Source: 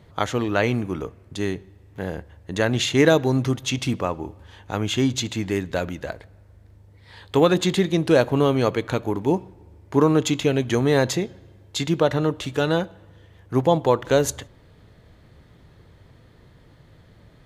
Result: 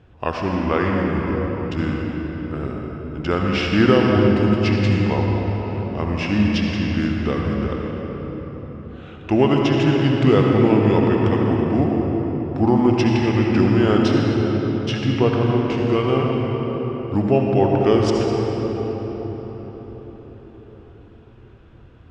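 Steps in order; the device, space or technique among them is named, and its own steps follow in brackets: air absorption 73 m; slowed and reverbed (varispeed -21%; reverb RT60 5.1 s, pre-delay 62 ms, DRR -1 dB)

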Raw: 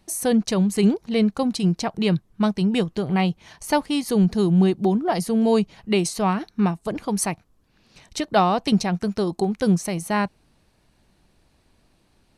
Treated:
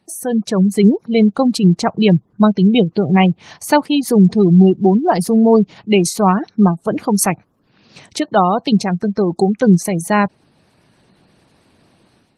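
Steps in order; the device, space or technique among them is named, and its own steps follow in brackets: 0.54–1.46 de-esser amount 55%; noise-suppressed video call (HPF 100 Hz 24 dB/oct; spectral gate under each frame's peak -25 dB strong; AGC gain up to 12 dB; Opus 20 kbps 48000 Hz)

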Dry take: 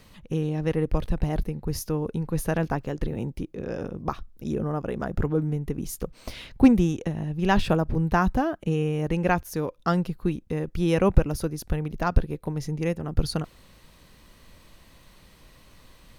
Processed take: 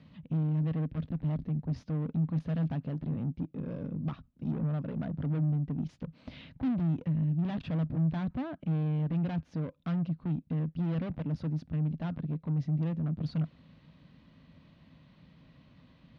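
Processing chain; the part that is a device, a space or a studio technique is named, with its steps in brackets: guitar amplifier (tube stage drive 31 dB, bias 0.4; tone controls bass +10 dB, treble +6 dB; speaker cabinet 100–3600 Hz, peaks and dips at 160 Hz +8 dB, 260 Hz +9 dB, 390 Hz -4 dB, 620 Hz +4 dB); gain -8.5 dB

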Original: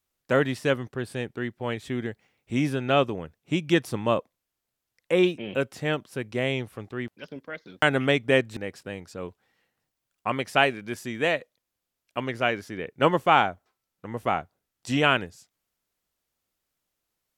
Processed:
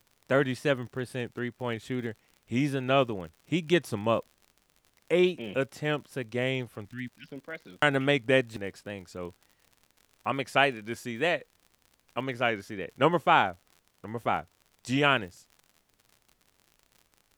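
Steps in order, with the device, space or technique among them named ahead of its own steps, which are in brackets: 6.85–7.3 elliptic band-stop 260–1700 Hz; vinyl LP (wow and flutter; crackle 66/s -40 dBFS; pink noise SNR 42 dB); gain -2.5 dB

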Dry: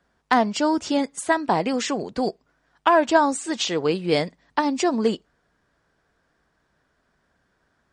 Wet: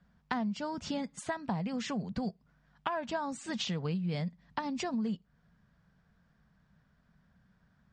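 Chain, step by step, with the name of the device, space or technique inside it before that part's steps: jukebox (LPF 5700 Hz 12 dB/oct; resonant low shelf 250 Hz +9 dB, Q 3; compressor 5:1, threshold -27 dBFS, peak gain reduction 13.5 dB); gain -5.5 dB

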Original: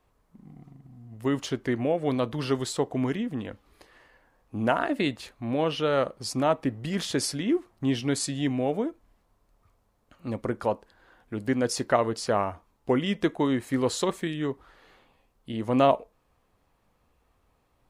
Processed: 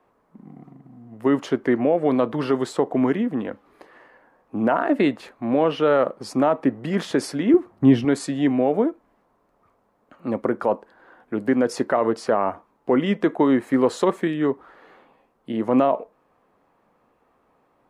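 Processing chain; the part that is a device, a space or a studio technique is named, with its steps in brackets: DJ mixer with the lows and highs turned down (three-band isolator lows -21 dB, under 170 Hz, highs -14 dB, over 2000 Hz; limiter -18 dBFS, peak gain reduction 9.5 dB); 7.54–8.05 bell 84 Hz +13 dB 2.4 oct; gain +9 dB

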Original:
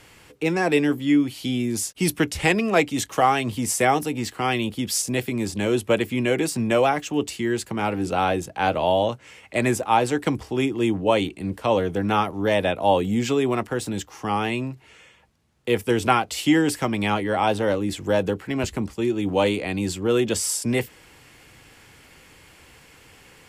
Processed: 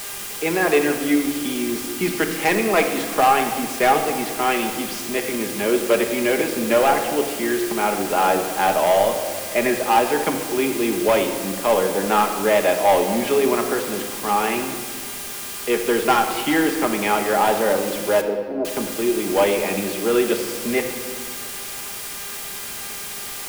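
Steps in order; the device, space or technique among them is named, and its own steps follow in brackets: aircraft radio (BPF 330–2600 Hz; hard clip -15.5 dBFS, distortion -15 dB; buzz 400 Hz, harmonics 32, -43 dBFS 0 dB/oct; white noise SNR 11 dB); 18.21–18.65 Chebyshev band-pass 280–700 Hz, order 2; shoebox room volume 2500 m³, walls mixed, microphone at 1.3 m; gain +3.5 dB

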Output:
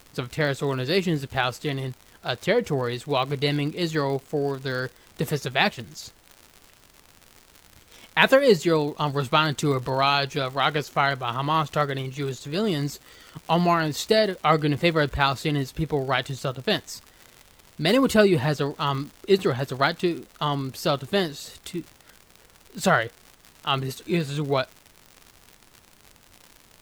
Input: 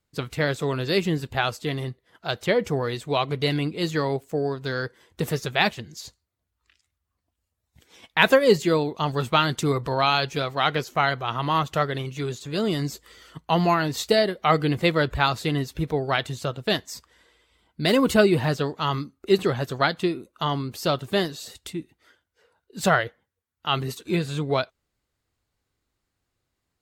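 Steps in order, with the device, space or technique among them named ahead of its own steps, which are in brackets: vinyl LP (crackle 110/s -33 dBFS; pink noise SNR 32 dB)

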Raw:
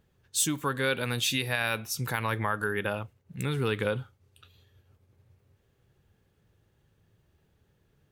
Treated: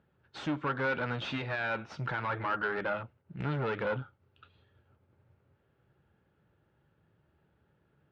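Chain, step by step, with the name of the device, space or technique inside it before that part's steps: guitar amplifier (tube stage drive 31 dB, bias 0.7; tone controls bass +4 dB, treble -2 dB; speaker cabinet 80–3900 Hz, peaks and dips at 99 Hz -7 dB, 320 Hz +4 dB, 590 Hz +5 dB, 880 Hz +6 dB, 1400 Hz +9 dB, 3600 Hz -3 dB)

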